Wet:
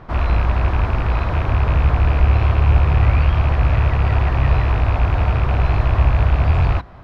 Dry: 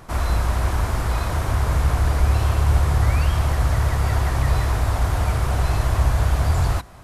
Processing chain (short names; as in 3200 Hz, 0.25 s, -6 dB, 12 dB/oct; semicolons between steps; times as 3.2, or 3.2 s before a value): rattling part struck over -20 dBFS, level -20 dBFS; air absorption 310 m; gain +4 dB